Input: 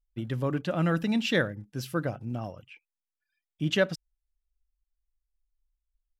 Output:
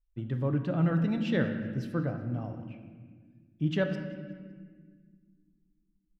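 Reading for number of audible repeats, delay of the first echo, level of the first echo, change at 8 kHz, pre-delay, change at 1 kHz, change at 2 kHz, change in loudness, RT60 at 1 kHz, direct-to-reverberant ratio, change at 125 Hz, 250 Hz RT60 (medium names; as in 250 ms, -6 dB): 2, 187 ms, -20.0 dB, under -15 dB, 4 ms, -5.0 dB, -6.5 dB, -1.5 dB, 1.4 s, 5.5 dB, +2.0 dB, 2.9 s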